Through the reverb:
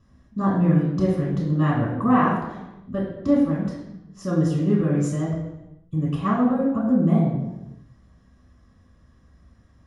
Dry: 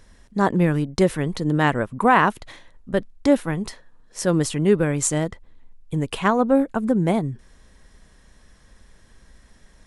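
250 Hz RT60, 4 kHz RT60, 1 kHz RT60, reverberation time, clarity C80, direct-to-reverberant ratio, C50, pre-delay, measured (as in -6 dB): 1.3 s, 0.75 s, 0.95 s, 1.0 s, 5.0 dB, -7.0 dB, 2.5 dB, 3 ms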